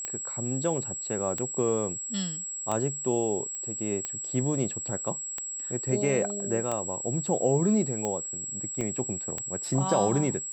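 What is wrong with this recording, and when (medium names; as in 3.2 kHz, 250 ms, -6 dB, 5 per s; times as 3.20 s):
tick 45 rpm -17 dBFS
whine 7.7 kHz -33 dBFS
3.55 s: pop -24 dBFS
8.81 s: dropout 2.3 ms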